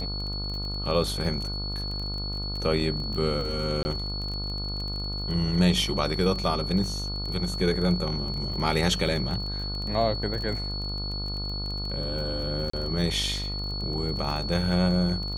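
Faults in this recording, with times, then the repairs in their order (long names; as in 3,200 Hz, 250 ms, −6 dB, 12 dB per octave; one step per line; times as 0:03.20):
mains buzz 50 Hz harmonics 29 −33 dBFS
surface crackle 24 per second −32 dBFS
whistle 4,400 Hz −33 dBFS
0:03.83–0:03.85: drop-out 20 ms
0:12.70–0:12.73: drop-out 34 ms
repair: click removal
hum removal 50 Hz, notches 29
notch filter 4,400 Hz, Q 30
repair the gap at 0:03.83, 20 ms
repair the gap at 0:12.70, 34 ms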